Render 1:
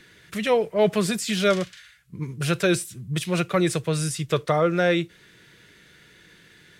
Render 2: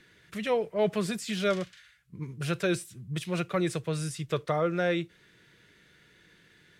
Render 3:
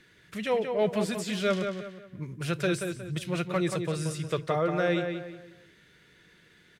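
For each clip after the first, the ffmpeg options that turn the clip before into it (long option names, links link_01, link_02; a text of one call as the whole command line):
ffmpeg -i in.wav -af "highshelf=frequency=4800:gain=-4.5,volume=-6.5dB" out.wav
ffmpeg -i in.wav -filter_complex "[0:a]asplit=2[link_01][link_02];[link_02]adelay=181,lowpass=frequency=3500:poles=1,volume=-6dB,asplit=2[link_03][link_04];[link_04]adelay=181,lowpass=frequency=3500:poles=1,volume=0.36,asplit=2[link_05][link_06];[link_06]adelay=181,lowpass=frequency=3500:poles=1,volume=0.36,asplit=2[link_07][link_08];[link_08]adelay=181,lowpass=frequency=3500:poles=1,volume=0.36[link_09];[link_01][link_03][link_05][link_07][link_09]amix=inputs=5:normalize=0" out.wav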